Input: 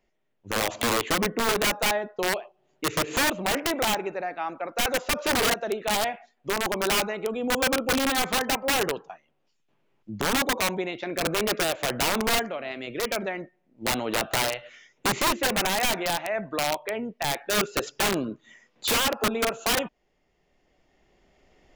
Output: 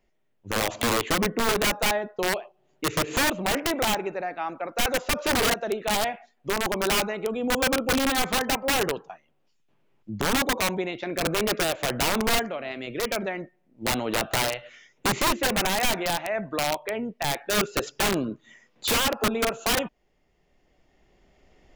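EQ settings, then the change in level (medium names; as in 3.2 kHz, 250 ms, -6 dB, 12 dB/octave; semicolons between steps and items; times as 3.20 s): bass shelf 180 Hz +4.5 dB; 0.0 dB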